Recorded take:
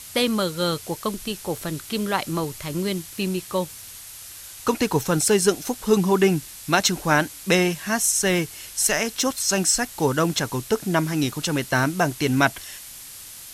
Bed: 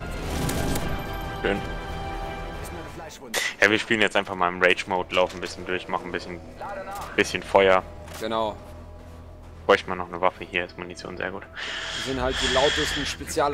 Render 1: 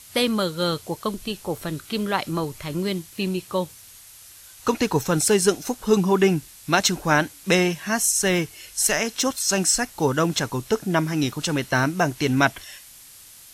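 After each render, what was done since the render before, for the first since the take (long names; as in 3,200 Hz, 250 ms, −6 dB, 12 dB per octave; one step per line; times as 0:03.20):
noise reduction from a noise print 6 dB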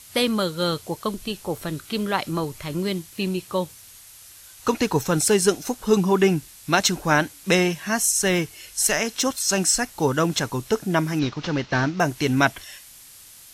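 0:11.19–0:12.00: variable-slope delta modulation 32 kbit/s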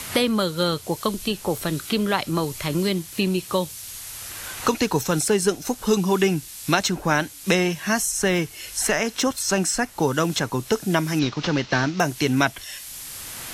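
multiband upward and downward compressor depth 70%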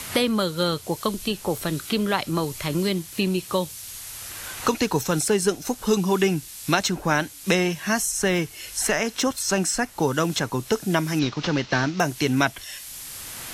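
level −1 dB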